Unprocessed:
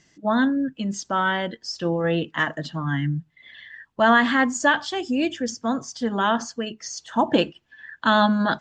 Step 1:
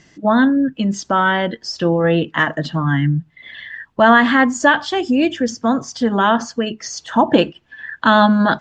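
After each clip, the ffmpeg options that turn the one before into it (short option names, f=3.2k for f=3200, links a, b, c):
-filter_complex "[0:a]asplit=2[a][b];[b]acompressor=threshold=-30dB:ratio=6,volume=0.5dB[c];[a][c]amix=inputs=2:normalize=0,aemphasis=mode=reproduction:type=cd,volume=4.5dB"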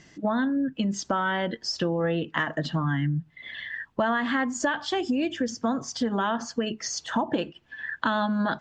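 -af "acompressor=threshold=-20dB:ratio=6,volume=-3dB"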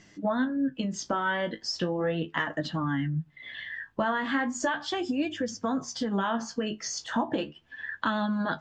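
-af "flanger=delay=9.8:depth=9.4:regen=40:speed=0.37:shape=sinusoidal,volume=1.5dB"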